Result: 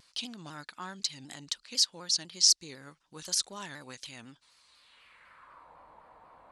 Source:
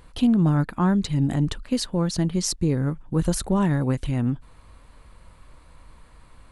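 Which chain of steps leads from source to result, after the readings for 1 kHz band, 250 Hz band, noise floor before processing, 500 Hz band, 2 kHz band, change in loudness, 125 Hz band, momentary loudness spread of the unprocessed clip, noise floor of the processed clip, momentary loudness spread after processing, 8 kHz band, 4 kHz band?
-13.5 dB, -27.0 dB, -51 dBFS, -20.5 dB, -8.0 dB, -5.0 dB, -30.5 dB, 6 LU, -71 dBFS, 22 LU, +3.0 dB, +6.0 dB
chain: band-pass sweep 5200 Hz -> 780 Hz, 4.67–5.75; shaped vibrato saw down 4 Hz, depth 100 cents; gain +8 dB

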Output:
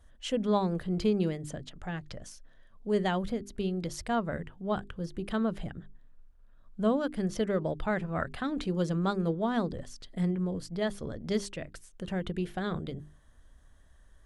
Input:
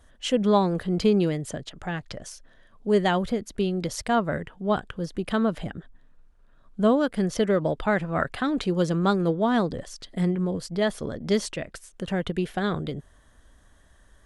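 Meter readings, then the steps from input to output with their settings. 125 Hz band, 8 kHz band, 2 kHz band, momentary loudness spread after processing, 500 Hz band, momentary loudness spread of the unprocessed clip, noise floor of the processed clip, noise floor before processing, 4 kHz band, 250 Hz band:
-5.0 dB, -7.5 dB, -7.5 dB, 14 LU, -7.0 dB, 14 LU, -58 dBFS, -57 dBFS, -7.5 dB, -6.0 dB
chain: low shelf 140 Hz +8 dB; notches 50/100/150/200/250/300/350/400 Hz; gain -7.5 dB

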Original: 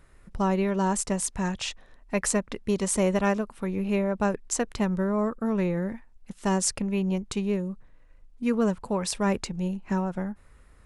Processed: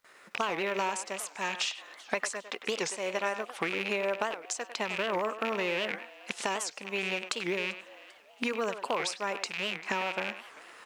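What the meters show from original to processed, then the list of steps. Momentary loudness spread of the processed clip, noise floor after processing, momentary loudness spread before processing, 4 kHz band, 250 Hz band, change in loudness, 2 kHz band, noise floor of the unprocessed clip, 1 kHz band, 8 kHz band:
6 LU, -56 dBFS, 9 LU, +3.5 dB, -14.5 dB, -5.0 dB, +4.5 dB, -55 dBFS, -1.5 dB, -7.5 dB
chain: rattling part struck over -37 dBFS, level -28 dBFS; recorder AGC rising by 5.8 dB/s; gate with hold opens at -45 dBFS; HPF 390 Hz 12 dB/oct; tilt +3 dB/oct; compressor 5:1, threshold -35 dBFS, peak gain reduction 18.5 dB; air absorption 100 m; on a send: frequency-shifting echo 0.394 s, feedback 46%, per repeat +140 Hz, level -21 dB; on the sum: companded quantiser 8-bit; speakerphone echo 0.1 s, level -10 dB; record warp 78 rpm, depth 250 cents; gain +7.5 dB

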